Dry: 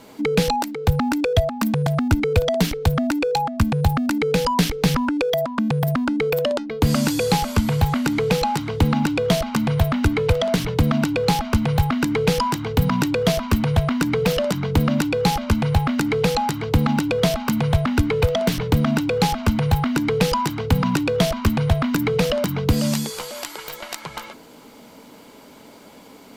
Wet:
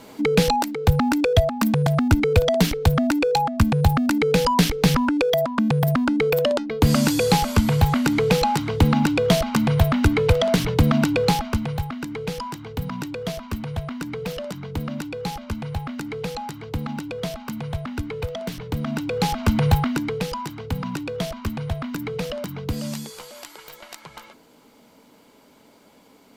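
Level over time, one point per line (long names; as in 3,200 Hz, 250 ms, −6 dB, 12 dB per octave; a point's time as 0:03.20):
0:11.21 +1 dB
0:11.93 −10 dB
0:18.64 −10 dB
0:19.68 +2 dB
0:20.26 −8.5 dB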